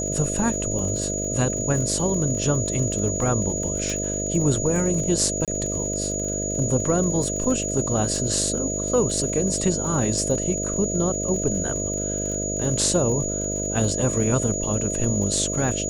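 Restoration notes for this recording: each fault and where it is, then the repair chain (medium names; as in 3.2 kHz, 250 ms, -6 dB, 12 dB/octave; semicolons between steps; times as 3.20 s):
buzz 50 Hz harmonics 13 -29 dBFS
crackle 44 per s -30 dBFS
whine 6.8 kHz -27 dBFS
3.90 s: pop
5.45–5.48 s: dropout 27 ms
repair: de-click; de-hum 50 Hz, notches 13; band-stop 6.8 kHz, Q 30; interpolate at 5.45 s, 27 ms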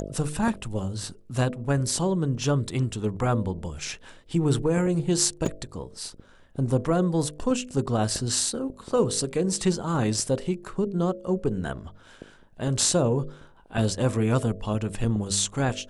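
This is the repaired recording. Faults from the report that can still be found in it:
3.90 s: pop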